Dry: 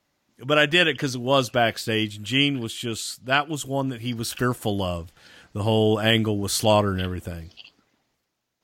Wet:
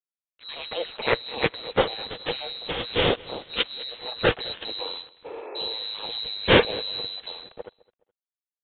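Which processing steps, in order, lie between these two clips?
band-swap scrambler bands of 4000 Hz; bell 480 Hz +13 dB 0.27 oct; in parallel at -2 dB: negative-ratio compressor -24 dBFS; on the sum: crossover distortion -40.5 dBFS; on a send: feedback echo 0.21 s, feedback 33%, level -22.5 dB; on the sum: spectral repair 5.28–5.64, 270–2700 Hz after; downsampling 8000 Hz; gain +6.5 dB

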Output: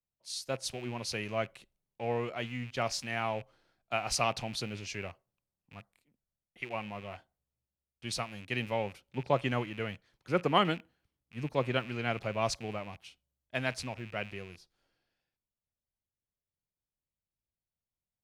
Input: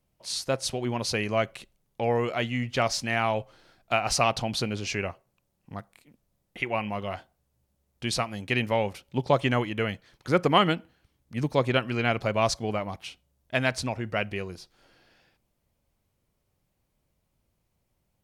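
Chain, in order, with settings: rattling part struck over -43 dBFS, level -28 dBFS; three-band expander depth 40%; gain -8 dB

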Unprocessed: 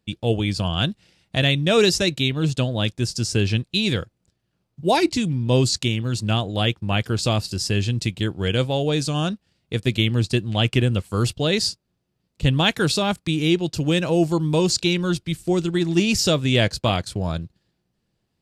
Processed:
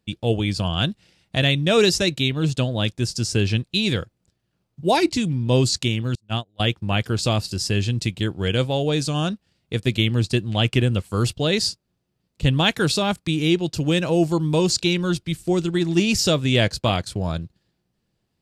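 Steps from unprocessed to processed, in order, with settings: 6.15–6.6 gate -18 dBFS, range -36 dB

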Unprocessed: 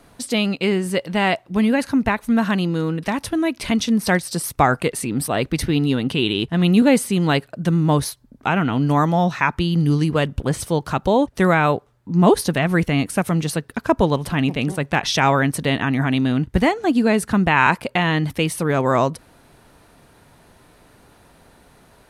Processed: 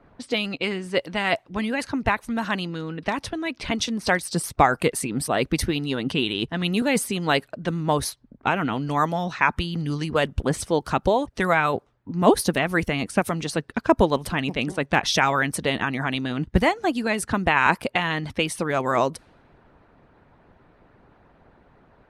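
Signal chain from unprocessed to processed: harmonic-percussive split harmonic -10 dB; low-pass opened by the level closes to 1800 Hz, open at -19.5 dBFS

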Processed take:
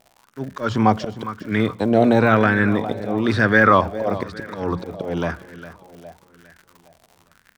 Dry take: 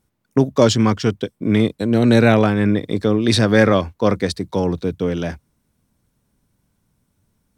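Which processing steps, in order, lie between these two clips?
de-esser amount 65%; high shelf 7900 Hz -9.5 dB; notches 60/120/180 Hz; in parallel at -1 dB: limiter -12 dBFS, peak gain reduction 9 dB; on the sum: auto swell 0.166 s; crackle 110/s -31 dBFS; feedback echo 0.407 s, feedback 49%, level -15 dB; on a send at -21 dB: reverb RT60 0.95 s, pre-delay 32 ms; on the sum: LFO bell 1 Hz 660–1700 Hz +15 dB; gain -6.5 dB

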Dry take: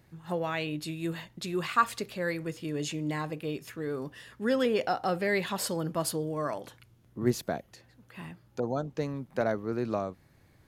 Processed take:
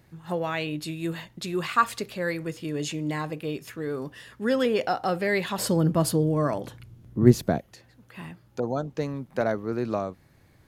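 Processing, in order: 5.58–7.59 low shelf 360 Hz +11.5 dB; gain +3 dB

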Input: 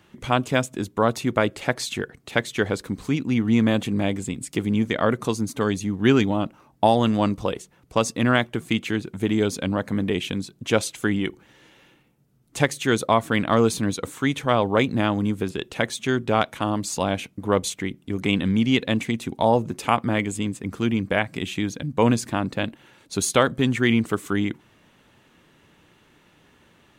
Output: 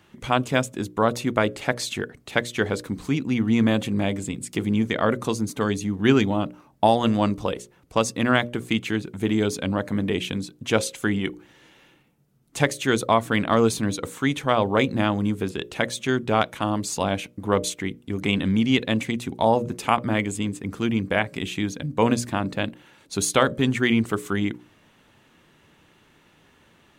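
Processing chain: notches 60/120/180/240/300/360/420/480/540/600 Hz

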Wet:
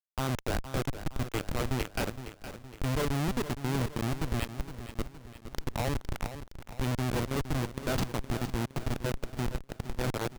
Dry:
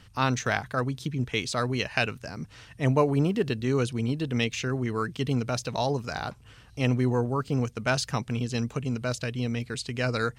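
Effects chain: 4.4–5.6 low shelf 500 Hz -9.5 dB; Schmitt trigger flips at -23 dBFS; on a send: feedback echo 0.465 s, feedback 50%, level -11.5 dB

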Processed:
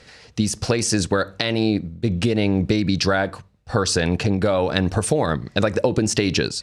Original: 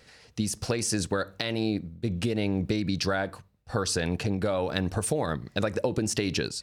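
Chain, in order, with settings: LPF 8500 Hz 12 dB/oct; gain +8 dB

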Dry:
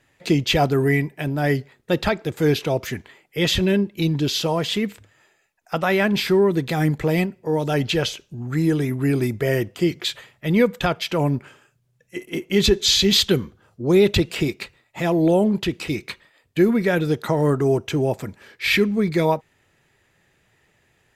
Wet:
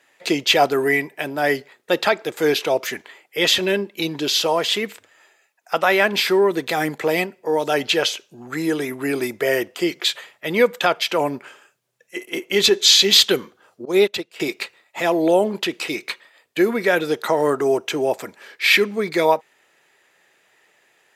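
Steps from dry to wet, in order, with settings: HPF 440 Hz 12 dB/oct; 13.85–14.4 upward expander 2.5:1, over -31 dBFS; gain +5 dB

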